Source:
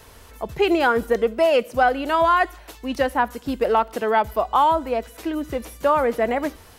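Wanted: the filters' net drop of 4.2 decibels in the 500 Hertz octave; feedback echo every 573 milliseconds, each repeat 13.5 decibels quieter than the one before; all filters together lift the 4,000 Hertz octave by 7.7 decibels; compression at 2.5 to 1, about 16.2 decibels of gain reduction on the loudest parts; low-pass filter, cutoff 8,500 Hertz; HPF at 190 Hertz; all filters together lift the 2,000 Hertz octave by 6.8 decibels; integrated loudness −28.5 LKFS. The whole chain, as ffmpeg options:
ffmpeg -i in.wav -af "highpass=190,lowpass=8500,equalizer=frequency=500:width_type=o:gain=-6,equalizer=frequency=2000:width_type=o:gain=8.5,equalizer=frequency=4000:width_type=o:gain=7,acompressor=threshold=-37dB:ratio=2.5,aecho=1:1:573|1146:0.211|0.0444,volume=5.5dB" out.wav

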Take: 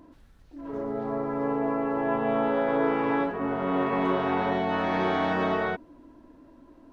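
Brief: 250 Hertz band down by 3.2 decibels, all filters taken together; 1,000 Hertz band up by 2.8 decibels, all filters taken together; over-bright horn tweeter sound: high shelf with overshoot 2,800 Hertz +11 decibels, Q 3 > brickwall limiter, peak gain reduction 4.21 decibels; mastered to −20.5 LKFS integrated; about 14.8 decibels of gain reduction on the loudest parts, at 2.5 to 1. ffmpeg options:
ffmpeg -i in.wav -af "equalizer=frequency=250:width_type=o:gain=-4,equalizer=frequency=1000:width_type=o:gain=5.5,acompressor=threshold=-44dB:ratio=2.5,highshelf=frequency=2800:width_type=q:width=3:gain=11,volume=21dB,alimiter=limit=-11dB:level=0:latency=1" out.wav

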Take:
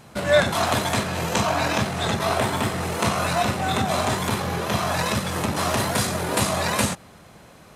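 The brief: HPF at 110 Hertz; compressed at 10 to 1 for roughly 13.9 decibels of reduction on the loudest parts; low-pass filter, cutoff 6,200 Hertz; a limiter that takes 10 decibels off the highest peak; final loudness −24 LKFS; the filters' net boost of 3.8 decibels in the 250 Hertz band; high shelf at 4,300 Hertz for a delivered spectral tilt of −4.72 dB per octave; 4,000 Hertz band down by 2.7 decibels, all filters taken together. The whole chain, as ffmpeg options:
ffmpeg -i in.wav -af "highpass=110,lowpass=6200,equalizer=frequency=250:width_type=o:gain=5.5,equalizer=frequency=4000:width_type=o:gain=-5.5,highshelf=frequency=4300:gain=5.5,acompressor=threshold=-26dB:ratio=10,volume=9dB,alimiter=limit=-15dB:level=0:latency=1" out.wav

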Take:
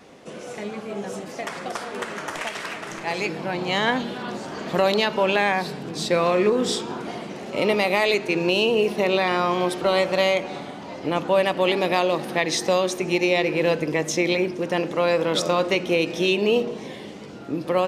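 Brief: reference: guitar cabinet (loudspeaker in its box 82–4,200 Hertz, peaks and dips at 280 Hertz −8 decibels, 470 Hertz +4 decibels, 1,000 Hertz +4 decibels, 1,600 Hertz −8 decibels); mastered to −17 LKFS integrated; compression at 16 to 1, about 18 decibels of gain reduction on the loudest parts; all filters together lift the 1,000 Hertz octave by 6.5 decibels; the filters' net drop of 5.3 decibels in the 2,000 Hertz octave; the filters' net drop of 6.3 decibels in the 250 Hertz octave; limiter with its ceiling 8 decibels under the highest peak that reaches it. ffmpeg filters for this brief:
ffmpeg -i in.wav -af "equalizer=frequency=250:width_type=o:gain=-9,equalizer=frequency=1000:width_type=o:gain=8,equalizer=frequency=2000:width_type=o:gain=-6,acompressor=threshold=-32dB:ratio=16,alimiter=level_in=4dB:limit=-24dB:level=0:latency=1,volume=-4dB,highpass=82,equalizer=frequency=280:width_type=q:width=4:gain=-8,equalizer=frequency=470:width_type=q:width=4:gain=4,equalizer=frequency=1000:width_type=q:width=4:gain=4,equalizer=frequency=1600:width_type=q:width=4:gain=-8,lowpass=frequency=4200:width=0.5412,lowpass=frequency=4200:width=1.3066,volume=20.5dB" out.wav

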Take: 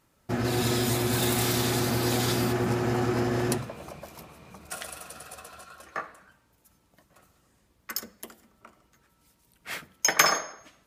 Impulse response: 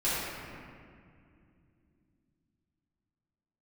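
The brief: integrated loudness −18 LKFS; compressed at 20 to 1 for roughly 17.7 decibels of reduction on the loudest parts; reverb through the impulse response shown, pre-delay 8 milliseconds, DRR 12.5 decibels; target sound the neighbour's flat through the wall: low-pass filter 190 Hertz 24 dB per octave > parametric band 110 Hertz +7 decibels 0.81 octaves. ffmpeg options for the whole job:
-filter_complex "[0:a]acompressor=threshold=-33dB:ratio=20,asplit=2[link_01][link_02];[1:a]atrim=start_sample=2205,adelay=8[link_03];[link_02][link_03]afir=irnorm=-1:irlink=0,volume=-23.5dB[link_04];[link_01][link_04]amix=inputs=2:normalize=0,lowpass=frequency=190:width=0.5412,lowpass=frequency=190:width=1.3066,equalizer=frequency=110:width_type=o:width=0.81:gain=7,volume=21dB"

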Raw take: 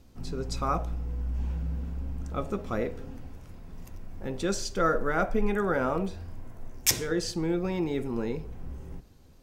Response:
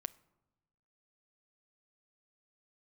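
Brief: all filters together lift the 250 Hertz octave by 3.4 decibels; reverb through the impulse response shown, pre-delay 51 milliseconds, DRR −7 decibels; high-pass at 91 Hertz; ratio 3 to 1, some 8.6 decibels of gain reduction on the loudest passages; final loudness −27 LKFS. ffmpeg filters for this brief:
-filter_complex "[0:a]highpass=91,equalizer=frequency=250:width_type=o:gain=5,acompressor=threshold=-30dB:ratio=3,asplit=2[link_01][link_02];[1:a]atrim=start_sample=2205,adelay=51[link_03];[link_02][link_03]afir=irnorm=-1:irlink=0,volume=9.5dB[link_04];[link_01][link_04]amix=inputs=2:normalize=0"

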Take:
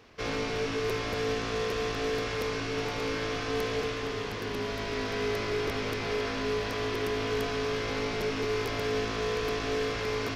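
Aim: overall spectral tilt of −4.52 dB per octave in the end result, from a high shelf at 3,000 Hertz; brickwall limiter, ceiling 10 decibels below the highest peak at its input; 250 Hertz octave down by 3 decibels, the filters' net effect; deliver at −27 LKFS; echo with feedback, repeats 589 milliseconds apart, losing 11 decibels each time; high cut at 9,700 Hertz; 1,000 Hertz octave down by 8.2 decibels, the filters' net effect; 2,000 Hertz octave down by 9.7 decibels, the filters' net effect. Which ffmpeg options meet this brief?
ffmpeg -i in.wav -af "lowpass=9700,equalizer=frequency=250:width_type=o:gain=-3,equalizer=frequency=1000:width_type=o:gain=-8,equalizer=frequency=2000:width_type=o:gain=-8.5,highshelf=frequency=3000:gain=-4,alimiter=level_in=8.5dB:limit=-24dB:level=0:latency=1,volume=-8.5dB,aecho=1:1:589|1178|1767:0.282|0.0789|0.0221,volume=13.5dB" out.wav

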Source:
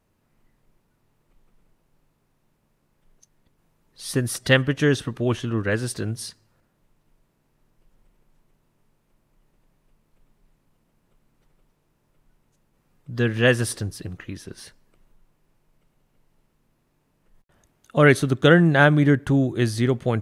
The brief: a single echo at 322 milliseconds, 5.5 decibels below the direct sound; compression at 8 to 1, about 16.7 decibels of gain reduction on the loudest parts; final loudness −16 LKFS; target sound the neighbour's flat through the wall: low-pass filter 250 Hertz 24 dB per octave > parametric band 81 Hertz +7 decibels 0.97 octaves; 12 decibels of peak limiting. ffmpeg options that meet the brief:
ffmpeg -i in.wav -af "acompressor=threshold=-28dB:ratio=8,alimiter=level_in=5.5dB:limit=-24dB:level=0:latency=1,volume=-5.5dB,lowpass=frequency=250:width=0.5412,lowpass=frequency=250:width=1.3066,equalizer=frequency=81:width_type=o:width=0.97:gain=7,aecho=1:1:322:0.531,volume=23dB" out.wav

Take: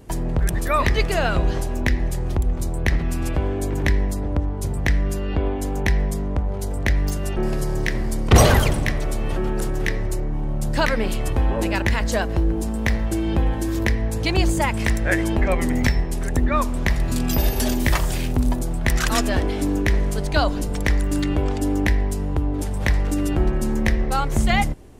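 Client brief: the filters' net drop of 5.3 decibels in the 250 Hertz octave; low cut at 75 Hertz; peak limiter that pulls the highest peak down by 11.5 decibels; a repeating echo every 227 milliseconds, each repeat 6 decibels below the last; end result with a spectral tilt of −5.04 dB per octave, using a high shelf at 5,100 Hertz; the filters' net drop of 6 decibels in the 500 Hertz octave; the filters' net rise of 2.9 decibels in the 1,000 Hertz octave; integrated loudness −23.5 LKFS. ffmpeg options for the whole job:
ffmpeg -i in.wav -af "highpass=75,equalizer=frequency=250:width_type=o:gain=-4.5,equalizer=frequency=500:width_type=o:gain=-9,equalizer=frequency=1000:width_type=o:gain=7,highshelf=frequency=5100:gain=-3.5,alimiter=limit=-14.5dB:level=0:latency=1,aecho=1:1:227|454|681|908|1135|1362:0.501|0.251|0.125|0.0626|0.0313|0.0157,volume=3dB" out.wav

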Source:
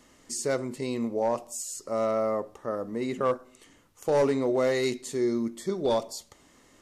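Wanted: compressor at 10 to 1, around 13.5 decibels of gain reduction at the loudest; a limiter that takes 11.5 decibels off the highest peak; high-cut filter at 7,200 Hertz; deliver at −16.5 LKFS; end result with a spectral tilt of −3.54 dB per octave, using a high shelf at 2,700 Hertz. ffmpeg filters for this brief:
ffmpeg -i in.wav -af "lowpass=7200,highshelf=frequency=2700:gain=5.5,acompressor=threshold=-34dB:ratio=10,volume=25dB,alimiter=limit=-7.5dB:level=0:latency=1" out.wav

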